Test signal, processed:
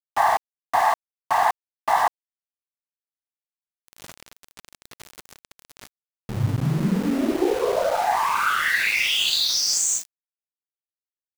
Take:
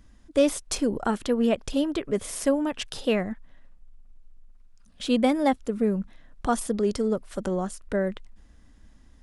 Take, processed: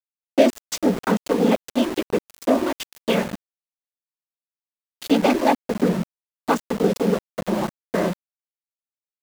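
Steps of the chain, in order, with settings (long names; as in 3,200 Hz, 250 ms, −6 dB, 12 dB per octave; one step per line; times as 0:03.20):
harmonic generator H 4 −35 dB, 7 −29 dB, 8 −24 dB, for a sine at −9 dBFS
cochlear-implant simulation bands 16
centre clipping without the shift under −32 dBFS
level +5 dB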